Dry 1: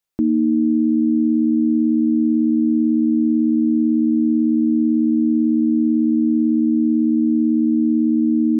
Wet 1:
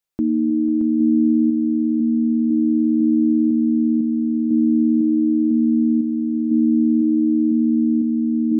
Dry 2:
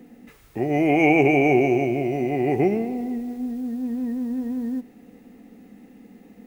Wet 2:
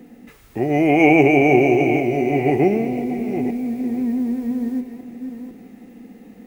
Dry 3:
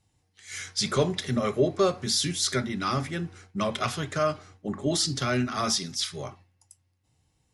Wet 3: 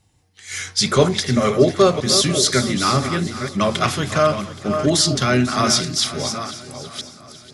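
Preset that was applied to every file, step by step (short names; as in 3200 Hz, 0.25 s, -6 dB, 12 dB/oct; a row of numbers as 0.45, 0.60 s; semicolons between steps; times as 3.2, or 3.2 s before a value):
reverse delay 0.501 s, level -9 dB; swung echo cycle 0.824 s, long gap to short 1.5:1, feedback 36%, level -16 dB; match loudness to -18 LUFS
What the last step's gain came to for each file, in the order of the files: -2.0, +3.5, +9.0 dB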